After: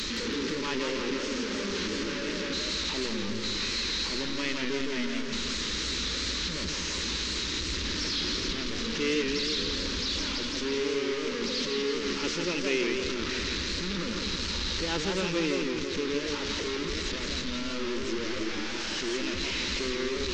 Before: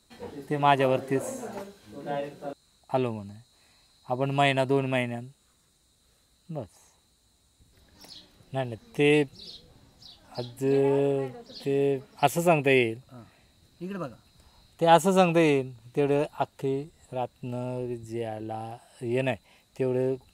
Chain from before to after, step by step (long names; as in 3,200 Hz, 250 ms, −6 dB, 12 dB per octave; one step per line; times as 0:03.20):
linear delta modulator 32 kbit/s, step −18.5 dBFS
phaser with its sweep stopped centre 300 Hz, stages 4
feedback echo with a swinging delay time 165 ms, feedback 61%, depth 154 cents, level −4 dB
level −6 dB